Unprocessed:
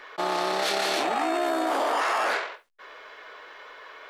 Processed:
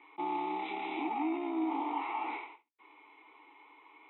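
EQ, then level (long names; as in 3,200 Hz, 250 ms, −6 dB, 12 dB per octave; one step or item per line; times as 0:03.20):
formant filter u
linear-phase brick-wall low-pass 4,000 Hz
notch filter 1,600 Hz, Q 5.9
+3.0 dB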